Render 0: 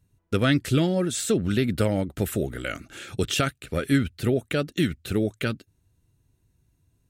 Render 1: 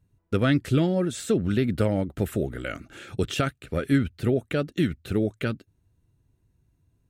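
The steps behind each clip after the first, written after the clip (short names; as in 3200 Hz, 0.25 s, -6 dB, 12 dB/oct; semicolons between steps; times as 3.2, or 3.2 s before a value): high shelf 2700 Hz -8.5 dB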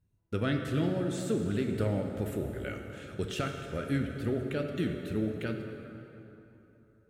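plate-style reverb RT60 3.4 s, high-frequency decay 0.6×, DRR 3 dB; gain -8.5 dB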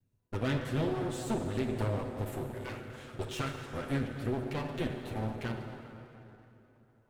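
minimum comb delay 8 ms; gain -1 dB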